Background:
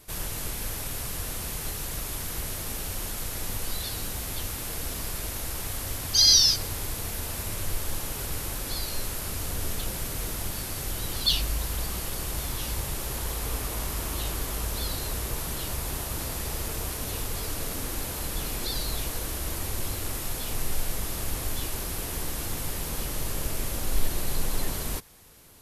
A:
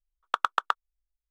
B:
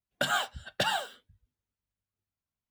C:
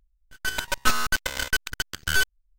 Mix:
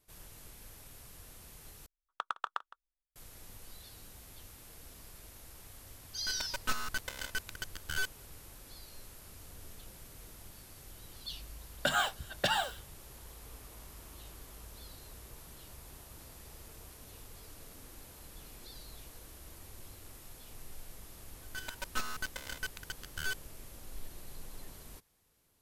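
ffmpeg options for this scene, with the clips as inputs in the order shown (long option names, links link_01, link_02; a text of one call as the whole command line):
ffmpeg -i bed.wav -i cue0.wav -i cue1.wav -i cue2.wav -filter_complex "[3:a]asplit=2[link_01][link_02];[0:a]volume=-19.5dB[link_03];[1:a]aecho=1:1:162:0.126[link_04];[link_03]asplit=2[link_05][link_06];[link_05]atrim=end=1.864[link_07];[link_04]atrim=end=1.3,asetpts=PTS-STARTPTS,volume=-11.5dB[link_08];[link_06]atrim=start=3.156[link_09];[link_01]atrim=end=2.58,asetpts=PTS-STARTPTS,volume=-12.5dB,afade=type=in:duration=0.004:curve=hsin,afade=type=out:start_time=2.576:duration=0.004:curve=hsin,adelay=5820[link_10];[2:a]atrim=end=2.7,asetpts=PTS-STARTPTS,volume=-1.5dB,afade=type=in:duration=0.004:curve=hsin,afade=type=out:start_time=2.696:duration=0.004:curve=hsin,adelay=11640[link_11];[link_02]atrim=end=2.58,asetpts=PTS-STARTPTS,volume=-14.5dB,afade=type=in:duration=0.004:curve=hsin,afade=type=out:start_time=2.576:duration=0.004:curve=hsin,adelay=21100[link_12];[link_07][link_08]acrossfade=duration=0.004:curve1=hsin:curve2=hsin[link_13];[link_13][link_09]acrossfade=duration=0.004:curve1=hsin:curve2=hsin[link_14];[link_14][link_10][link_11][link_12]amix=inputs=4:normalize=0" out.wav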